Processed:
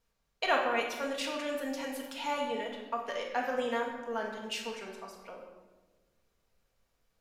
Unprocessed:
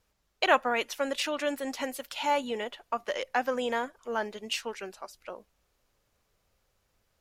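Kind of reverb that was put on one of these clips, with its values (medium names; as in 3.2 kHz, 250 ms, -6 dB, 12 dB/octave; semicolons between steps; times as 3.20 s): simulated room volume 840 m³, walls mixed, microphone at 1.7 m; trim -7 dB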